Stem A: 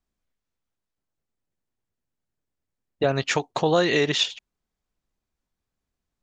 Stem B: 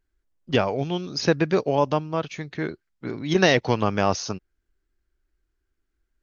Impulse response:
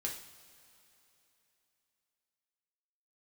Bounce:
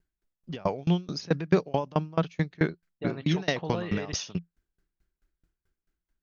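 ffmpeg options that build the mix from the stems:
-filter_complex "[0:a]lowpass=f=3300:w=0.5412,lowpass=f=3300:w=1.3066,volume=0.168[s0];[1:a]dynaudnorm=f=180:g=7:m=1.58,alimiter=limit=0.224:level=0:latency=1:release=39,aeval=exprs='val(0)*pow(10,-29*if(lt(mod(4.6*n/s,1),2*abs(4.6)/1000),1-mod(4.6*n/s,1)/(2*abs(4.6)/1000),(mod(4.6*n/s,1)-2*abs(4.6)/1000)/(1-2*abs(4.6)/1000))/20)':c=same,volume=1.33[s1];[s0][s1]amix=inputs=2:normalize=0,equalizer=f=170:t=o:w=0.25:g=10"

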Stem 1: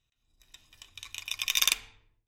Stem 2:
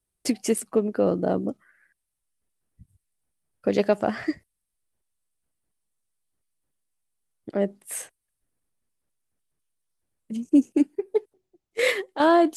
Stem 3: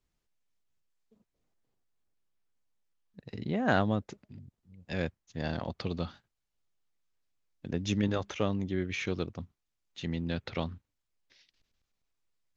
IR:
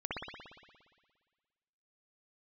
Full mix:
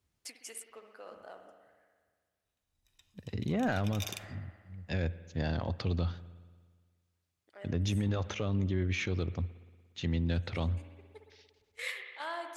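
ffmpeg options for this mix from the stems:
-filter_complex "[0:a]adelay=2450,volume=0.251[s0];[1:a]highpass=1200,volume=0.178,asplit=2[s1][s2];[s2]volume=0.447[s3];[2:a]highpass=50,asoftclip=type=tanh:threshold=0.112,volume=1.12,asplit=3[s4][s5][s6];[s5]volume=0.075[s7];[s6]apad=whole_len=554329[s8];[s1][s8]sidechaincompress=threshold=0.0141:ratio=8:attack=47:release=834[s9];[3:a]atrim=start_sample=2205[s10];[s3][s7]amix=inputs=2:normalize=0[s11];[s11][s10]afir=irnorm=-1:irlink=0[s12];[s0][s9][s4][s12]amix=inputs=4:normalize=0,equalizer=f=88:t=o:w=0.6:g=10.5,alimiter=limit=0.0708:level=0:latency=1:release=61"

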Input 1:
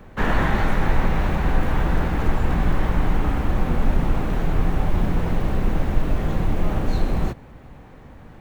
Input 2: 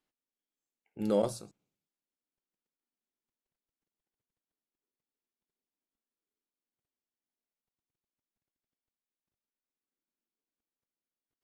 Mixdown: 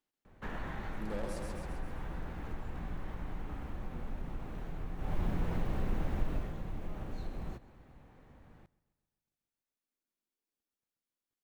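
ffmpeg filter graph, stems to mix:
-filter_complex "[0:a]adelay=250,volume=0.631,afade=t=in:st=4.98:d=0.2:silence=0.251189,afade=t=out:st=6.31:d=0.24:silence=0.298538,asplit=2[s0][s1];[s1]volume=0.0794[s2];[1:a]volume=26.6,asoftclip=hard,volume=0.0376,volume=0.708,asplit=2[s3][s4];[s4]volume=0.631[s5];[s2][s5]amix=inputs=2:normalize=0,aecho=0:1:133|266|399|532|665|798|931|1064:1|0.56|0.314|0.176|0.0983|0.0551|0.0308|0.0173[s6];[s0][s3][s6]amix=inputs=3:normalize=0,acompressor=threshold=0.00708:ratio=1.5"

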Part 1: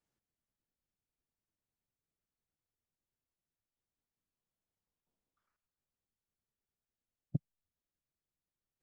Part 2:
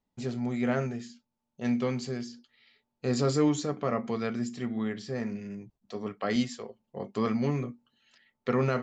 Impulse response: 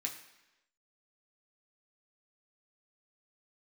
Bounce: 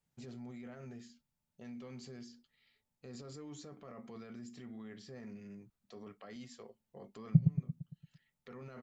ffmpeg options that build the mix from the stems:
-filter_complex "[0:a]lowshelf=f=220:t=q:w=3:g=7.5,volume=0.794,asplit=4[s0][s1][s2][s3];[s1]volume=0.531[s4];[s2]volume=0.596[s5];[1:a]acompressor=threshold=0.0224:ratio=2,alimiter=level_in=2.11:limit=0.0631:level=0:latency=1:release=13,volume=0.473,volume=0.299[s6];[s3]apad=whole_len=389095[s7];[s6][s7]sidechaincompress=threshold=0.0224:ratio=8:attack=47:release=1150[s8];[2:a]atrim=start_sample=2205[s9];[s4][s9]afir=irnorm=-1:irlink=0[s10];[s5]aecho=0:1:114|228|342|456|570|684|798:1|0.51|0.26|0.133|0.0677|0.0345|0.0176[s11];[s0][s8][s10][s11]amix=inputs=4:normalize=0"

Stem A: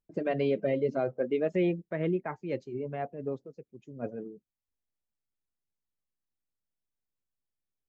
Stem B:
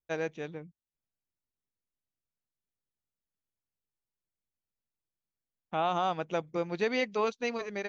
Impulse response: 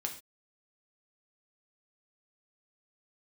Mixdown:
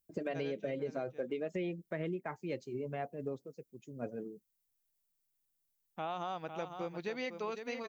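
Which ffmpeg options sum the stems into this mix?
-filter_complex "[0:a]aemphasis=mode=production:type=75kf,volume=0.75[s0];[1:a]adelay=250,volume=0.447,asplit=2[s1][s2];[s2]volume=0.335,aecho=0:1:503:1[s3];[s0][s1][s3]amix=inputs=3:normalize=0,acompressor=threshold=0.02:ratio=6"

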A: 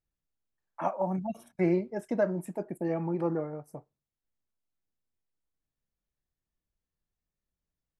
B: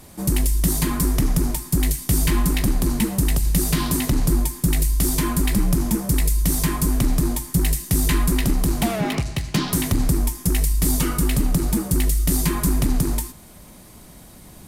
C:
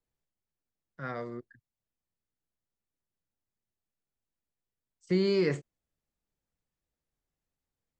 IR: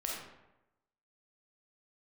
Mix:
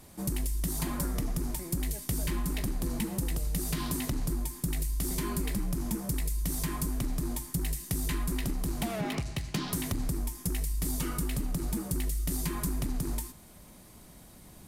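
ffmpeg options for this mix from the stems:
-filter_complex "[0:a]alimiter=level_in=1.26:limit=0.0631:level=0:latency=1,volume=0.794,volume=0.335[s0];[1:a]volume=0.398[s1];[2:a]acompressor=threshold=0.0224:ratio=6,volume=0.562[s2];[s0][s1][s2]amix=inputs=3:normalize=0,acompressor=threshold=0.0398:ratio=4"

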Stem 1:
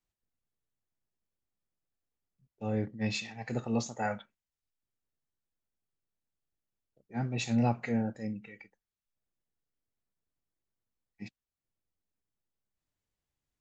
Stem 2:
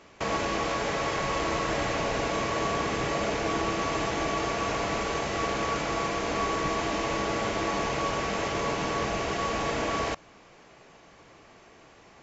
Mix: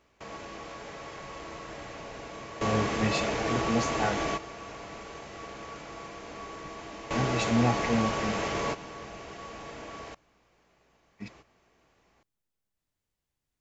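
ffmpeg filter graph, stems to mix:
-filter_complex "[0:a]volume=1.33,asplit=2[s0][s1];[1:a]aeval=exprs='val(0)+0.000794*(sin(2*PI*60*n/s)+sin(2*PI*2*60*n/s)/2+sin(2*PI*3*60*n/s)/3+sin(2*PI*4*60*n/s)/4+sin(2*PI*5*60*n/s)/5)':c=same,volume=0.841[s2];[s1]apad=whole_len=539334[s3];[s2][s3]sidechaingate=range=0.251:threshold=0.00112:ratio=16:detection=peak[s4];[s0][s4]amix=inputs=2:normalize=0"

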